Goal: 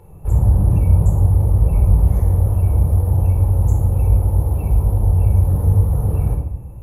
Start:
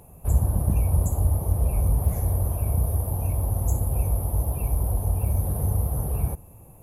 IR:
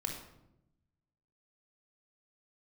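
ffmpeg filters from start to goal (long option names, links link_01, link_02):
-filter_complex "[0:a]highshelf=frequency=4000:gain=-11[link_01];[1:a]atrim=start_sample=2205[link_02];[link_01][link_02]afir=irnorm=-1:irlink=0,volume=3dB"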